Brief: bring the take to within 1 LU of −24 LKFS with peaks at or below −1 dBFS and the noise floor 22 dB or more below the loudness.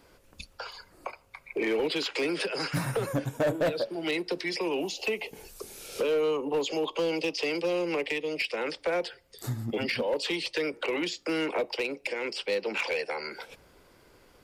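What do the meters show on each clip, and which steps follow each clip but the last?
share of clipped samples 1.3%; peaks flattened at −22.0 dBFS; integrated loudness −30.5 LKFS; sample peak −22.0 dBFS; target loudness −24.0 LKFS
→ clipped peaks rebuilt −22 dBFS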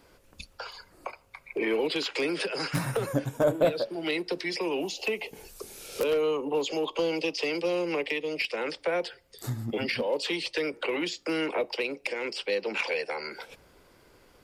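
share of clipped samples 0.0%; integrated loudness −29.5 LKFS; sample peak −13.0 dBFS; target loudness −24.0 LKFS
→ level +5.5 dB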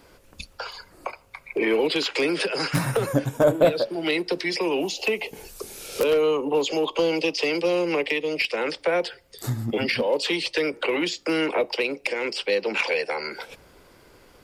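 integrated loudness −24.0 LKFS; sample peak −7.5 dBFS; background noise floor −54 dBFS

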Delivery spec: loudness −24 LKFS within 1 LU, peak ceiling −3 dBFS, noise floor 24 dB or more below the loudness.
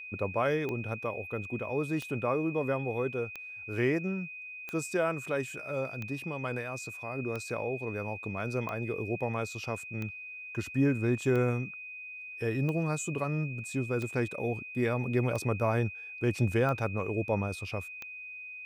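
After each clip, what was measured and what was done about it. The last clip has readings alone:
number of clicks 14; interfering tone 2,500 Hz; level of the tone −41 dBFS; integrated loudness −32.5 LKFS; sample peak −16.0 dBFS; target loudness −24.0 LKFS
→ click removal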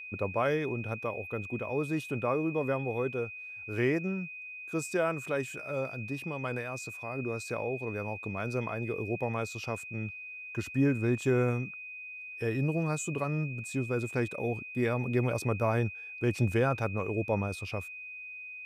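number of clicks 0; interfering tone 2,500 Hz; level of the tone −41 dBFS
→ notch filter 2,500 Hz, Q 30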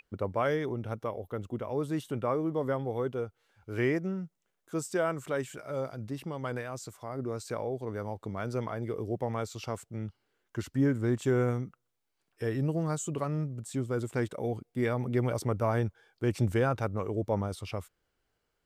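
interfering tone none found; integrated loudness −33.0 LKFS; sample peak −16.5 dBFS; target loudness −24.0 LKFS
→ level +9 dB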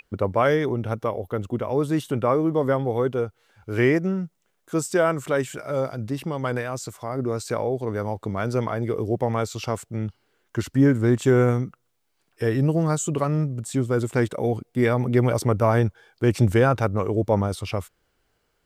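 integrated loudness −24.0 LKFS; sample peak −7.5 dBFS; background noise floor −71 dBFS

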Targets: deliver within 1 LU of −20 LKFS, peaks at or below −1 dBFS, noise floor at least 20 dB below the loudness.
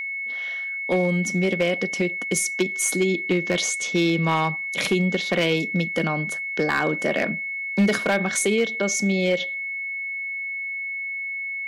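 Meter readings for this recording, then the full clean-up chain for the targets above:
share of clipped samples 0.5%; peaks flattened at −13.5 dBFS; interfering tone 2,200 Hz; level of the tone −27 dBFS; integrated loudness −23.0 LKFS; sample peak −13.5 dBFS; target loudness −20.0 LKFS
→ clipped peaks rebuilt −13.5 dBFS
notch filter 2,200 Hz, Q 30
level +3 dB

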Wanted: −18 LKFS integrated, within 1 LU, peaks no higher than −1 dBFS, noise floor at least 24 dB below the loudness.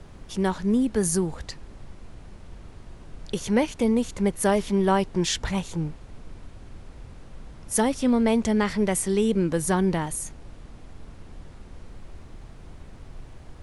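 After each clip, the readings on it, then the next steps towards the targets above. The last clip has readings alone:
background noise floor −45 dBFS; target noise floor −49 dBFS; integrated loudness −24.5 LKFS; sample peak −9.0 dBFS; target loudness −18.0 LKFS
→ noise reduction from a noise print 6 dB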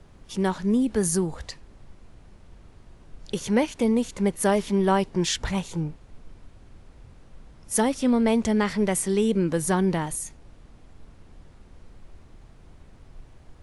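background noise floor −51 dBFS; integrated loudness −24.5 LKFS; sample peak −9.5 dBFS; target loudness −18.0 LKFS
→ level +6.5 dB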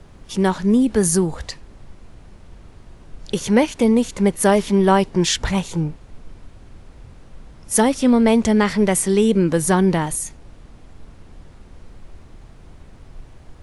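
integrated loudness −18.0 LKFS; sample peak −3.0 dBFS; background noise floor −45 dBFS

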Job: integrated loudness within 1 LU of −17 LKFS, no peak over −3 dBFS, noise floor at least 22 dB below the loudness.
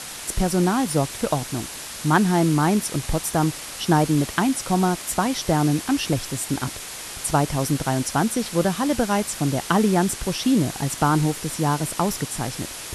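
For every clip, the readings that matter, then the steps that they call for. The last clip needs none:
background noise floor −35 dBFS; target noise floor −45 dBFS; integrated loudness −22.5 LKFS; sample peak −5.0 dBFS; target loudness −17.0 LKFS
→ broadband denoise 10 dB, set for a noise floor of −35 dBFS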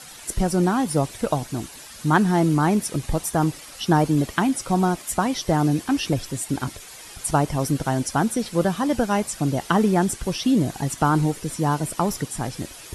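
background noise floor −42 dBFS; target noise floor −45 dBFS
→ broadband denoise 6 dB, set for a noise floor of −42 dBFS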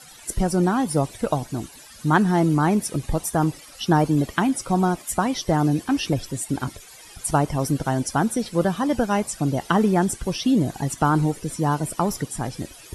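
background noise floor −45 dBFS; integrated loudness −23.0 LKFS; sample peak −5.5 dBFS; target loudness −17.0 LKFS
→ level +6 dB
brickwall limiter −3 dBFS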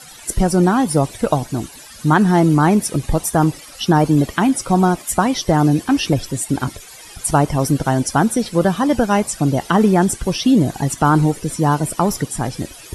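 integrated loudness −17.0 LKFS; sample peak −3.0 dBFS; background noise floor −39 dBFS

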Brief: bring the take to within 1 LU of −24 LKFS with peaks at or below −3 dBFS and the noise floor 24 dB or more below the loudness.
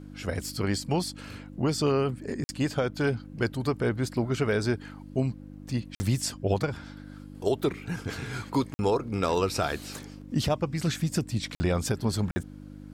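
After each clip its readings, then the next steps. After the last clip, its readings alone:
number of dropouts 5; longest dropout 50 ms; mains hum 50 Hz; hum harmonics up to 300 Hz; level of the hum −40 dBFS; integrated loudness −29.5 LKFS; sample peak −13.0 dBFS; target loudness −24.0 LKFS
→ repair the gap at 0:02.44/0:05.95/0:08.74/0:11.55/0:12.31, 50 ms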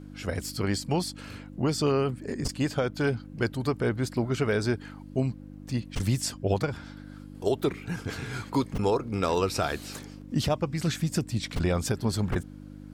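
number of dropouts 0; mains hum 50 Hz; hum harmonics up to 300 Hz; level of the hum −40 dBFS
→ hum removal 50 Hz, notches 6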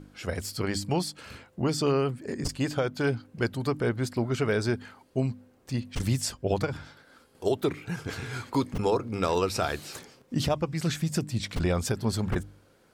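mains hum none found; integrated loudness −29.5 LKFS; sample peak −13.0 dBFS; target loudness −24.0 LKFS
→ level +5.5 dB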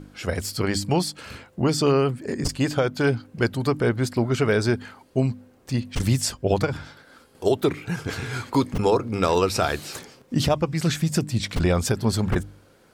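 integrated loudness −24.0 LKFS; sample peak −7.5 dBFS; background noise floor −56 dBFS

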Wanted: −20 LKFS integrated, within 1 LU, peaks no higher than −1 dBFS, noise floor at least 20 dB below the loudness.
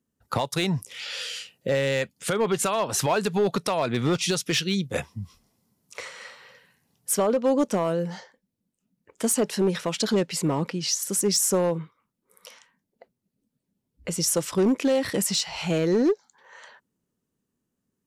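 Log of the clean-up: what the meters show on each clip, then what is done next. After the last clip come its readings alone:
share of clipped samples 0.8%; peaks flattened at −16.0 dBFS; integrated loudness −25.0 LKFS; sample peak −16.0 dBFS; target loudness −20.0 LKFS
→ clipped peaks rebuilt −16 dBFS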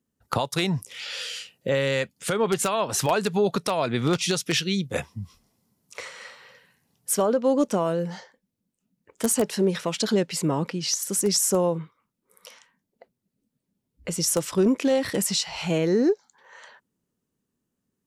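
share of clipped samples 0.0%; integrated loudness −24.5 LKFS; sample peak −7.0 dBFS; target loudness −20.0 LKFS
→ level +4.5 dB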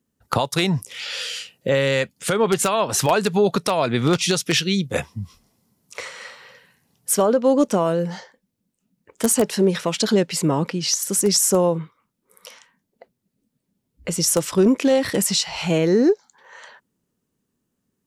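integrated loudness −20.0 LKFS; sample peak −2.5 dBFS; background noise floor −77 dBFS

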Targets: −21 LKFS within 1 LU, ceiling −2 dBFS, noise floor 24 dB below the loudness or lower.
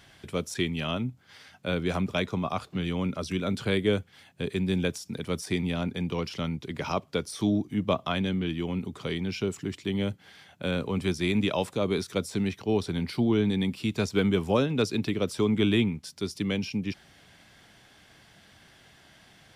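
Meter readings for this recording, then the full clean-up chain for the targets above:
integrated loudness −29.0 LKFS; sample peak −11.5 dBFS; target loudness −21.0 LKFS
→ level +8 dB

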